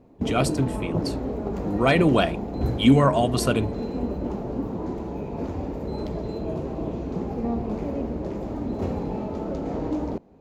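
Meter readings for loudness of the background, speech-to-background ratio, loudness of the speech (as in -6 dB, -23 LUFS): -29.5 LUFS, 7.5 dB, -22.0 LUFS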